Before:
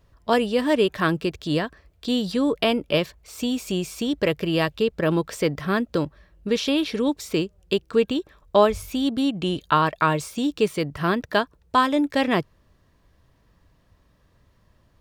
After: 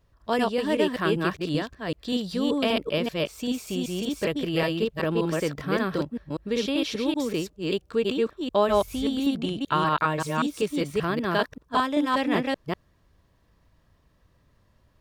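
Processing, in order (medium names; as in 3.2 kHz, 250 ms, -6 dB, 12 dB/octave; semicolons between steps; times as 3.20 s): chunks repeated in reverse 193 ms, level -0.5 dB; trim -5.5 dB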